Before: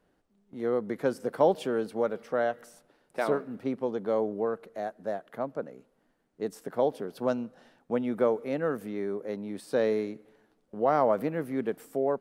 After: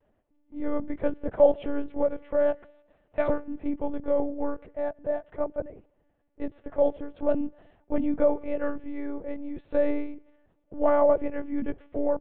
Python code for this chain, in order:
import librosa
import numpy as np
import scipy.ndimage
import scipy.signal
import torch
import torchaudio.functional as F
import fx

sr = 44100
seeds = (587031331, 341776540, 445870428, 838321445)

y = fx.cabinet(x, sr, low_hz=180.0, low_slope=12, high_hz=3000.0, hz=(230.0, 620.0, 1400.0), db=(9, 7, -5))
y = fx.lpc_monotone(y, sr, seeds[0], pitch_hz=290.0, order=10)
y = fx.vibrato(y, sr, rate_hz=0.41, depth_cents=23.0)